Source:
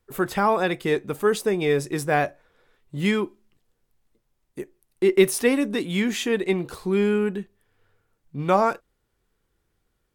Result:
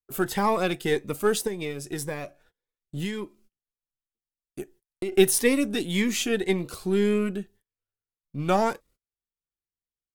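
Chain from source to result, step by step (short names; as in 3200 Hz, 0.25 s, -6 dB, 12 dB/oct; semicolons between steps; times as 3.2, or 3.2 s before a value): half-wave gain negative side -3 dB; high shelf 3300 Hz +6 dB; gate -52 dBFS, range -29 dB; 1.47–5.12 compressor 6:1, threshold -27 dBFS, peak gain reduction 11.5 dB; cascading phaser rising 1.8 Hz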